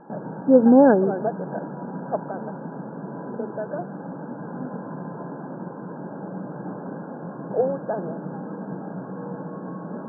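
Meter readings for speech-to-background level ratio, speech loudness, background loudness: 15.5 dB, −16.5 LKFS, −32.0 LKFS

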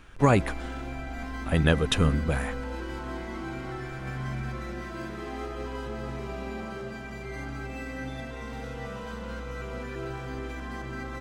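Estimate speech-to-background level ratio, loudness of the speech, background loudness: 11.0 dB, −25.5 LKFS, −36.5 LKFS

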